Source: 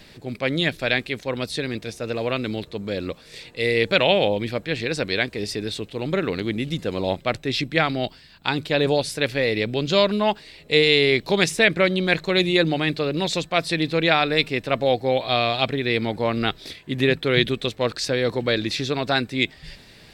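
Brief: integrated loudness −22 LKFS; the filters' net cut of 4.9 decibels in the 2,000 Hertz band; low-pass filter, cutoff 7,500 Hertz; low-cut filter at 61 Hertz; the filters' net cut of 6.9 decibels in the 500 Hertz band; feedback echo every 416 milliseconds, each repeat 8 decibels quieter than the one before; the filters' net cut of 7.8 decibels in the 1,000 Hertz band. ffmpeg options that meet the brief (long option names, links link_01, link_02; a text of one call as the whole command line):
ffmpeg -i in.wav -af "highpass=61,lowpass=7500,equalizer=frequency=500:width_type=o:gain=-6.5,equalizer=frequency=1000:width_type=o:gain=-7.5,equalizer=frequency=2000:width_type=o:gain=-4,aecho=1:1:416|832|1248|1664|2080:0.398|0.159|0.0637|0.0255|0.0102,volume=3.5dB" out.wav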